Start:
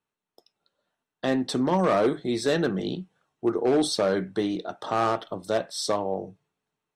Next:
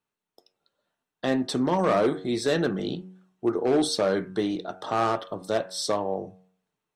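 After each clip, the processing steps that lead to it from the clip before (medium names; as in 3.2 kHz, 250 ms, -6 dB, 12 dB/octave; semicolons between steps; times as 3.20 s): de-hum 92.91 Hz, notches 19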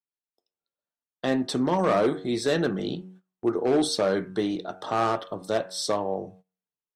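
gate -49 dBFS, range -19 dB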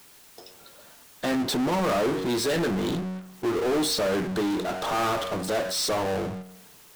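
power-law waveshaper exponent 0.35; trim -7 dB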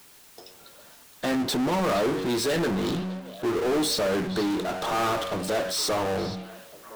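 repeats whose band climbs or falls 470 ms, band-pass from 3.5 kHz, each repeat -1.4 oct, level -11 dB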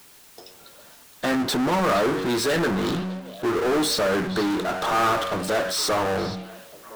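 dynamic bell 1.4 kHz, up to +5 dB, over -42 dBFS, Q 1.4; trim +2 dB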